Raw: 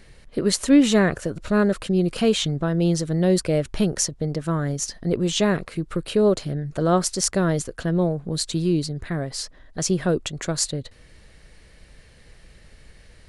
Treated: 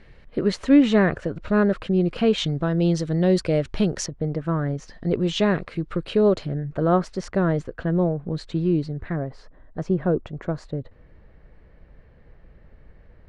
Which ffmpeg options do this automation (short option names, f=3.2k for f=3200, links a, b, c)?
-af "asetnsamples=n=441:p=0,asendcmd='2.38 lowpass f 4500;4.06 lowpass f 2000;4.93 lowpass f 3600;6.46 lowpass f 2000;9.16 lowpass f 1200',lowpass=2.8k"